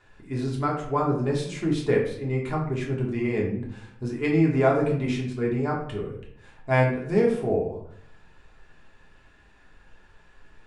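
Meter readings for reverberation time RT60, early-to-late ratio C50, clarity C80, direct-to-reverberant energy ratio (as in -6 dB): 0.65 s, 5.0 dB, 9.0 dB, -3.0 dB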